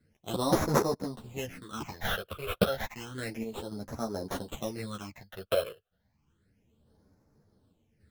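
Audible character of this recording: aliases and images of a low sample rate 4700 Hz, jitter 0%; phasing stages 8, 0.31 Hz, lowest notch 250–3000 Hz; random-step tremolo 3.5 Hz; a shimmering, thickened sound

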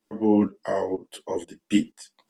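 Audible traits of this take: tremolo saw up 2.1 Hz, depth 80%; a shimmering, thickened sound

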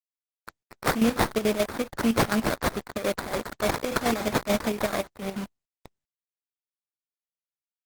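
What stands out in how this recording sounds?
a quantiser's noise floor 6-bit, dither none; chopped level 6.9 Hz, depth 60%, duty 55%; aliases and images of a low sample rate 2900 Hz, jitter 20%; Opus

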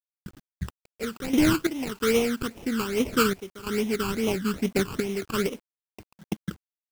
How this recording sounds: aliases and images of a low sample rate 1800 Hz, jitter 20%; random-step tremolo 3 Hz, depth 90%; phasing stages 12, 2.4 Hz, lowest notch 630–1500 Hz; a quantiser's noise floor 10-bit, dither none

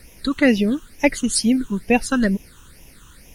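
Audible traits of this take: phasing stages 8, 2.2 Hz, lowest notch 630–1300 Hz; a quantiser's noise floor 12-bit, dither triangular

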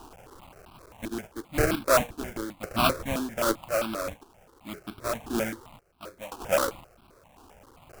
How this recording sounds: a quantiser's noise floor 8-bit, dither triangular; random-step tremolo 1.9 Hz, depth 90%; aliases and images of a low sample rate 1900 Hz, jitter 20%; notches that jump at a steady rate 7.6 Hz 560–1900 Hz

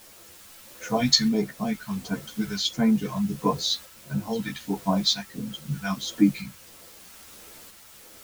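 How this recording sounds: phasing stages 2, 1.5 Hz, lowest notch 370–4100 Hz; a quantiser's noise floor 8-bit, dither triangular; tremolo saw up 0.78 Hz, depth 35%; a shimmering, thickened sound

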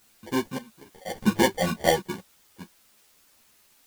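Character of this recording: aliases and images of a low sample rate 1300 Hz, jitter 0%; random-step tremolo, depth 95%; a quantiser's noise floor 10-bit, dither triangular; a shimmering, thickened sound

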